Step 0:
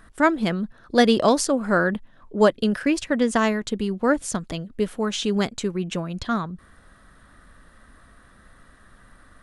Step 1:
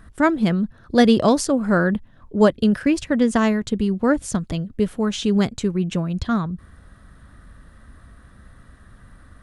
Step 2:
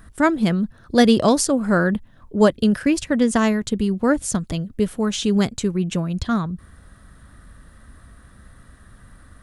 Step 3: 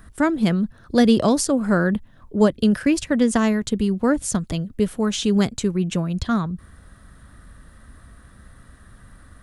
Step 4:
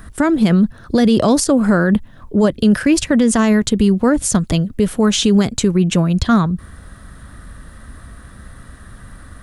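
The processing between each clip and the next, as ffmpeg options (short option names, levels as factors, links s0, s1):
-af "equalizer=f=79:w=0.42:g=12,volume=0.891"
-af "highshelf=f=6600:g=9"
-filter_complex "[0:a]acrossover=split=390[s0][s1];[s1]acompressor=threshold=0.112:ratio=4[s2];[s0][s2]amix=inputs=2:normalize=0"
-af "alimiter=level_in=4.73:limit=0.891:release=50:level=0:latency=1,volume=0.596"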